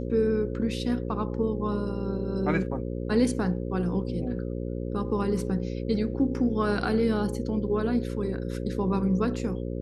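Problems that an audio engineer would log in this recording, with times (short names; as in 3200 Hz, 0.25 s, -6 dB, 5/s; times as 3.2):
buzz 60 Hz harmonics 9 -32 dBFS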